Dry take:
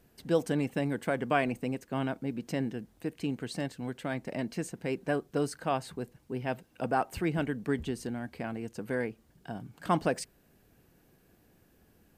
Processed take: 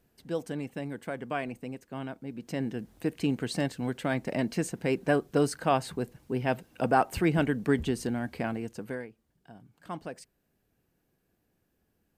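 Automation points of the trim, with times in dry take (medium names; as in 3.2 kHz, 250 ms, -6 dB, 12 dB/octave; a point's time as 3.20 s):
2.25 s -5.5 dB
2.93 s +5 dB
8.46 s +5 dB
8.91 s -2 dB
9.08 s -11 dB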